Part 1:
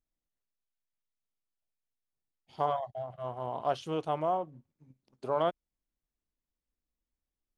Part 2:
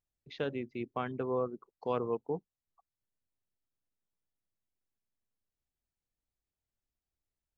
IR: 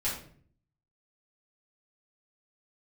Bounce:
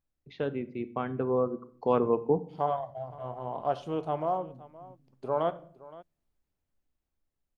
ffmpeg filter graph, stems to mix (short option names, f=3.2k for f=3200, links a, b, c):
-filter_complex "[0:a]volume=0.5dB,asplit=3[a][b][c];[b]volume=-16dB[d];[c]volume=-18.5dB[e];[1:a]dynaudnorm=f=530:g=7:m=8dB,volume=2.5dB,asplit=2[f][g];[g]volume=-17dB[h];[2:a]atrim=start_sample=2205[i];[d][h]amix=inputs=2:normalize=0[j];[j][i]afir=irnorm=-1:irlink=0[k];[e]aecho=0:1:518:1[l];[a][f][k][l]amix=inputs=4:normalize=0,highshelf=f=2.1k:g=-10"